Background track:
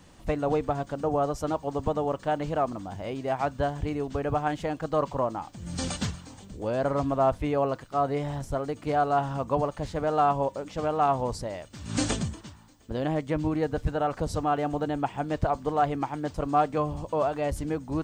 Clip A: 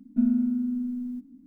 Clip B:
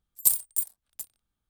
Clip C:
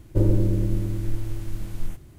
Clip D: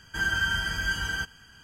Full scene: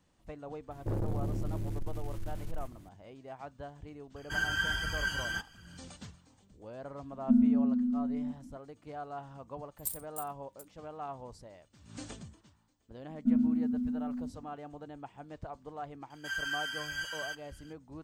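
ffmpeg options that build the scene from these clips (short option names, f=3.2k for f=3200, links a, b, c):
-filter_complex "[4:a]asplit=2[a][b];[1:a]asplit=2[c][d];[0:a]volume=-17.5dB[e];[3:a]asoftclip=type=tanh:threshold=-24dB[f];[a]flanger=delay=0.7:depth=7.3:regen=44:speed=1.4:shape=sinusoidal[g];[c]lowpass=1.2k[h];[d]equalizer=f=130:t=o:w=1.6:g=6.5[i];[b]highpass=1.4k[j];[f]atrim=end=2.18,asetpts=PTS-STARTPTS,volume=-5.5dB,afade=t=in:d=0.004:c=hsin,afade=t=out:st=2.176:d=0.004:c=hsin,adelay=710[k];[g]atrim=end=1.63,asetpts=PTS-STARTPTS,volume=-1dB,afade=t=in:d=0.004:c=hsin,afade=t=out:st=1.626:d=0.004:c=hsin,adelay=4160[l];[h]atrim=end=1.46,asetpts=PTS-STARTPTS,volume=-1.5dB,afade=t=in:d=0.004:c=hsin,afade=t=out:st=1.456:d=0.004:c=hsin,adelay=7120[m];[2:a]atrim=end=1.49,asetpts=PTS-STARTPTS,volume=-15.5dB,afade=t=in:d=0.004:c=hsin,afade=t=out:st=1.486:d=0.004:c=hsin,adelay=9600[n];[i]atrim=end=1.46,asetpts=PTS-STARTPTS,volume=-7dB,afade=t=in:d=0.004:c=hsin,afade=t=out:st=1.456:d=0.004:c=hsin,adelay=13090[o];[j]atrim=end=1.63,asetpts=PTS-STARTPTS,volume=-7dB,afade=t=in:d=0.004:c=hsin,afade=t=out:st=1.626:d=0.004:c=hsin,adelay=16100[p];[e][k][l][m][n][o][p]amix=inputs=7:normalize=0"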